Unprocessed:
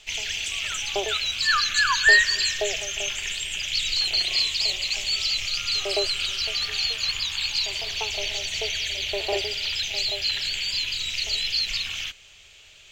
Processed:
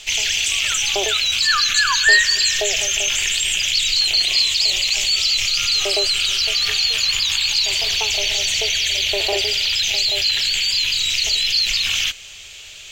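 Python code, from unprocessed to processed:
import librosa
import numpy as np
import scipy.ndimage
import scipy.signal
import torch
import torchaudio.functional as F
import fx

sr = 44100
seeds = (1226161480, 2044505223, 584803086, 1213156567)

p1 = fx.high_shelf(x, sr, hz=3300.0, db=8.5)
p2 = fx.over_compress(p1, sr, threshold_db=-28.0, ratio=-1.0)
y = p1 + (p2 * librosa.db_to_amplitude(-1.5))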